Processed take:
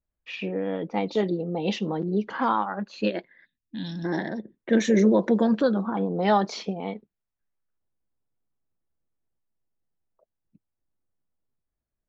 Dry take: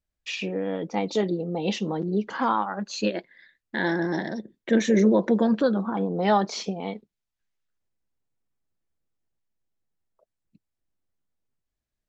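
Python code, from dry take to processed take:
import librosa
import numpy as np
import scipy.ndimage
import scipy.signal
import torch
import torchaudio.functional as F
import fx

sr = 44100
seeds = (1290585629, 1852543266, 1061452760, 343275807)

y = fx.env_lowpass(x, sr, base_hz=1400.0, full_db=-17.0)
y = fx.spec_box(y, sr, start_s=3.45, length_s=0.6, low_hz=310.0, high_hz=2400.0, gain_db=-22)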